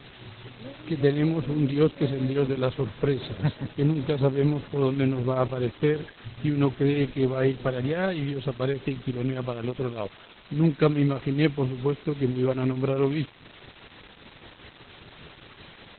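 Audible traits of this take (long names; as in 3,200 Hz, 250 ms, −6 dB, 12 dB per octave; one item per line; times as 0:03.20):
tremolo triangle 5 Hz, depth 70%
a quantiser's noise floor 8 bits, dither triangular
Opus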